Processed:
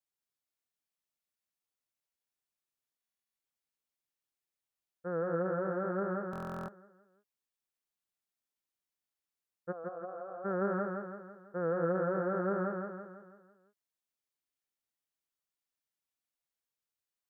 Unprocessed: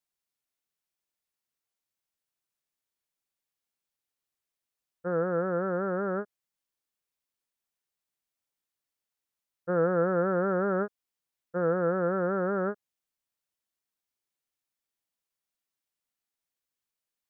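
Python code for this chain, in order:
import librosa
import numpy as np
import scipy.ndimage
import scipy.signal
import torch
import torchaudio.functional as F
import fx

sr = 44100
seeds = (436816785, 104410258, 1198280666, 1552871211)

p1 = fx.vowel_filter(x, sr, vowel='a', at=(9.71, 10.44), fade=0.02)
p2 = p1 + fx.echo_feedback(p1, sr, ms=165, feedback_pct=50, wet_db=-4, dry=0)
p3 = fx.buffer_glitch(p2, sr, at_s=(2.99, 6.31), block=1024, repeats=15)
y = F.gain(torch.from_numpy(p3), -6.5).numpy()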